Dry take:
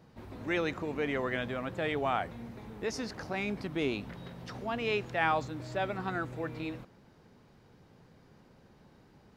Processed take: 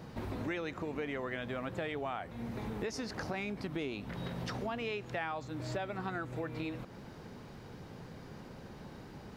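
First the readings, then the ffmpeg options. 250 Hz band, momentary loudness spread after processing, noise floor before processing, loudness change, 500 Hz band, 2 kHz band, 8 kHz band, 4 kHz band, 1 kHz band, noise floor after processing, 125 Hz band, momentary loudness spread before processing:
-2.5 dB, 12 LU, -61 dBFS, -5.5 dB, -4.5 dB, -5.5 dB, -1.5 dB, -4.0 dB, -6.5 dB, -50 dBFS, -0.5 dB, 13 LU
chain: -af "acompressor=threshold=0.00501:ratio=8,volume=3.35"

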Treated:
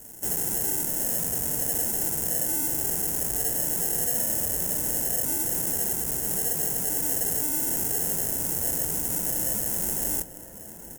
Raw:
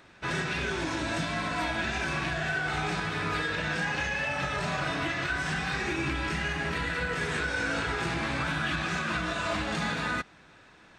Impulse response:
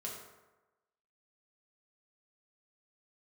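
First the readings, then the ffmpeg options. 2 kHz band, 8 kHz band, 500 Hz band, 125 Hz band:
-15.5 dB, +19.5 dB, -2.0 dB, -5.0 dB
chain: -filter_complex "[0:a]highpass=110,aecho=1:1:4.7:0.61,acrusher=samples=37:mix=1:aa=0.000001,asoftclip=type=tanh:threshold=0.0168,aexciter=amount=13.2:drive=8.1:freq=6300,asplit=2[s0][s1];[s1]adelay=991.3,volume=0.282,highshelf=f=4000:g=-22.3[s2];[s0][s2]amix=inputs=2:normalize=0"

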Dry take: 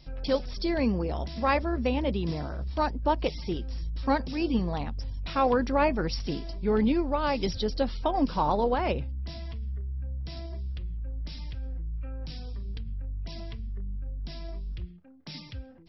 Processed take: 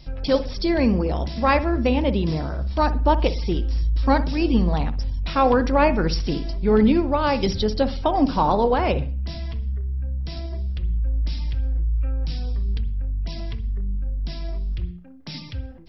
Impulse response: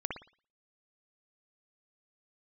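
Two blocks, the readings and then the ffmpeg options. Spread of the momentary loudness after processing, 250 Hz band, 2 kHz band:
11 LU, +7.0 dB, +6.5 dB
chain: -filter_complex "[0:a]asplit=2[s0][s1];[1:a]atrim=start_sample=2205,lowshelf=f=180:g=11.5[s2];[s1][s2]afir=irnorm=-1:irlink=0,volume=0.224[s3];[s0][s3]amix=inputs=2:normalize=0,volume=1.68"

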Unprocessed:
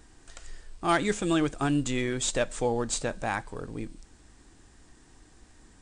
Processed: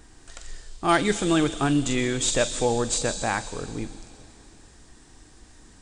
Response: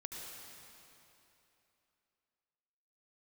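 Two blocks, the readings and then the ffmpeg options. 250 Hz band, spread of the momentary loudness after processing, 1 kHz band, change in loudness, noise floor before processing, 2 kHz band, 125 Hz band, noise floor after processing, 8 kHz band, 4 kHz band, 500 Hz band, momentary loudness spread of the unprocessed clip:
+4.0 dB, 13 LU, +4.0 dB, +4.5 dB, -57 dBFS, +4.0 dB, +4.0 dB, -52 dBFS, +6.5 dB, +6.5 dB, +4.0 dB, 13 LU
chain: -filter_complex "[0:a]asplit=2[s0][s1];[s1]highshelf=f=2600:t=q:w=1.5:g=12.5[s2];[1:a]atrim=start_sample=2205,adelay=44[s3];[s2][s3]afir=irnorm=-1:irlink=0,volume=0.224[s4];[s0][s4]amix=inputs=2:normalize=0,volume=1.58"

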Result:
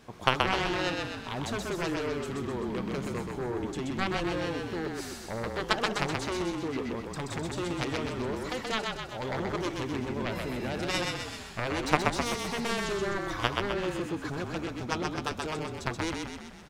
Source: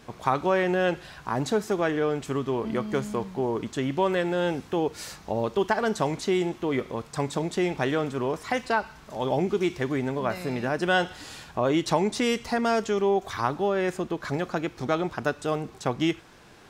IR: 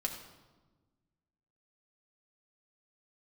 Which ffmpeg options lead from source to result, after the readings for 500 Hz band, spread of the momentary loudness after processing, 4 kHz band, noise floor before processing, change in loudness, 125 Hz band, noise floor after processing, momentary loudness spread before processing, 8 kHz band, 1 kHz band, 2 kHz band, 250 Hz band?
-7.5 dB, 7 LU, +1.5 dB, -50 dBFS, -5.0 dB, -3.5 dB, -43 dBFS, 6 LU, 0.0 dB, -4.5 dB, -2.0 dB, -5.5 dB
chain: -filter_complex "[0:a]acontrast=25,aeval=exprs='0.562*(cos(1*acos(clip(val(0)/0.562,-1,1)))-cos(1*PI/2))+0.251*(cos(3*acos(clip(val(0)/0.562,-1,1)))-cos(3*PI/2))':c=same,asplit=9[s0][s1][s2][s3][s4][s5][s6][s7][s8];[s1]adelay=128,afreqshift=-33,volume=0.708[s9];[s2]adelay=256,afreqshift=-66,volume=0.389[s10];[s3]adelay=384,afreqshift=-99,volume=0.214[s11];[s4]adelay=512,afreqshift=-132,volume=0.117[s12];[s5]adelay=640,afreqshift=-165,volume=0.0646[s13];[s6]adelay=768,afreqshift=-198,volume=0.0355[s14];[s7]adelay=896,afreqshift=-231,volume=0.0195[s15];[s8]adelay=1024,afreqshift=-264,volume=0.0108[s16];[s0][s9][s10][s11][s12][s13][s14][s15][s16]amix=inputs=9:normalize=0"

